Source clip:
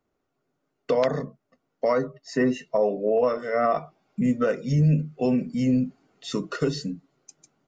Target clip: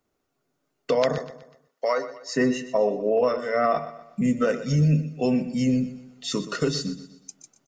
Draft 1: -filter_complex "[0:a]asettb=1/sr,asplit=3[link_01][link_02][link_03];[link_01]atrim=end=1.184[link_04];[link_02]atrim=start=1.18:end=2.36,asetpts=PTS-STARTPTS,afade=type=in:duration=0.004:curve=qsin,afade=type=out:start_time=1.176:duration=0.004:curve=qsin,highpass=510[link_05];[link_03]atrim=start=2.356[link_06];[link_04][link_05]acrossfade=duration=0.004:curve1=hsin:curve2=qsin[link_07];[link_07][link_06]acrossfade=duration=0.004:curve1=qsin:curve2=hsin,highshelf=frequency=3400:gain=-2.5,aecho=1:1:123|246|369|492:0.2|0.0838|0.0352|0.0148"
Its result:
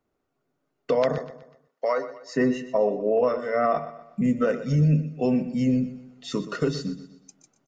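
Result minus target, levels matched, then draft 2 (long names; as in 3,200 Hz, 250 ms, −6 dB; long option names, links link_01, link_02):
8,000 Hz band −8.5 dB
-filter_complex "[0:a]asettb=1/sr,asplit=3[link_01][link_02][link_03];[link_01]atrim=end=1.184[link_04];[link_02]atrim=start=1.18:end=2.36,asetpts=PTS-STARTPTS,afade=type=in:duration=0.004:curve=qsin,afade=type=out:start_time=1.176:duration=0.004:curve=qsin,highpass=510[link_05];[link_03]atrim=start=2.356[link_06];[link_04][link_05]acrossfade=duration=0.004:curve1=hsin:curve2=qsin[link_07];[link_07][link_06]acrossfade=duration=0.004:curve1=qsin:curve2=hsin,highshelf=frequency=3400:gain=8.5,aecho=1:1:123|246|369|492:0.2|0.0838|0.0352|0.0148"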